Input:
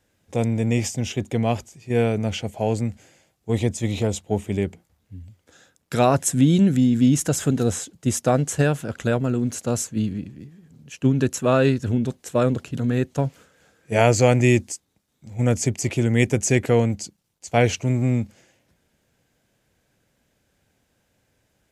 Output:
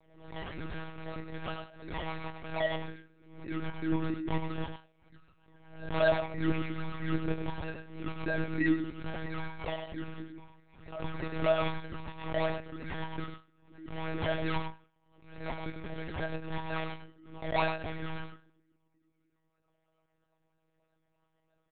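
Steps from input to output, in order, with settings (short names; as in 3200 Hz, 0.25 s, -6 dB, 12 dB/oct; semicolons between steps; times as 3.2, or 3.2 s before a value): HPF 76 Hz 12 dB/oct; in parallel at -2 dB: compressor, threshold -31 dBFS, peak gain reduction 18.5 dB; on the sum: LFO low-pass sine 0.2 Hz 290–3000 Hz; decimation with a swept rate 28×, swing 60% 3.1 Hz; air absorption 98 m; metallic resonator 310 Hz, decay 0.21 s, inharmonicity 0.002; on a send: echo 99 ms -6.5 dB; on the sum: Schroeder reverb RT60 0.49 s, combs from 32 ms, DRR 16 dB; monotone LPC vocoder at 8 kHz 160 Hz; backwards sustainer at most 81 dB/s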